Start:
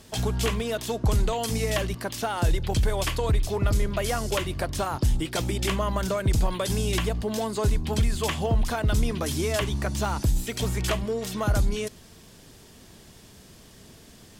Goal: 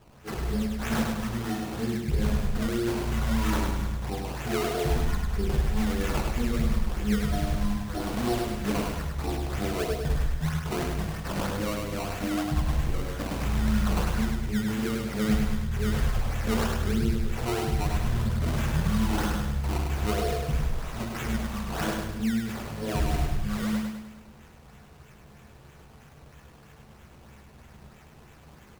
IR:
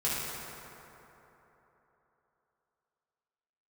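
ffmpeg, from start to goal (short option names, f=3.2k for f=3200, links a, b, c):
-filter_complex "[0:a]asetrate=22050,aresample=44100[a];[1:a]atrim=start_sample=2205,atrim=end_sample=3087[b];[a][b]afir=irnorm=-1:irlink=0,acrusher=samples=18:mix=1:aa=0.000001:lfo=1:lforange=18:lforate=3.1,aecho=1:1:102|204|306|408|510|612:0.631|0.309|0.151|0.0742|0.0364|0.0178,volume=-7.5dB"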